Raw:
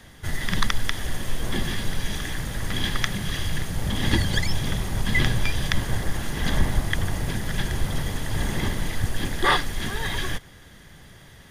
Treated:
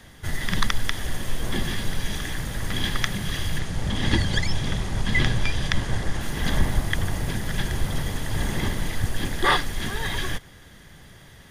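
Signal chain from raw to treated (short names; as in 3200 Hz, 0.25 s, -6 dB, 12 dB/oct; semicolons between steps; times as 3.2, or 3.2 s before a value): 3.59–6.21 LPF 8500 Hz 12 dB/oct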